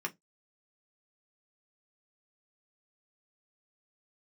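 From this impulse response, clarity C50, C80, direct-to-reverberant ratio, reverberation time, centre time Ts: 25.0 dB, 37.5 dB, 1.5 dB, 0.15 s, 6 ms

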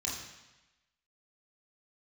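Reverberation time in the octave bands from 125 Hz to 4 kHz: 1.0 s, 1.0 s, 1.0 s, 1.1 s, 1.1 s, 1.1 s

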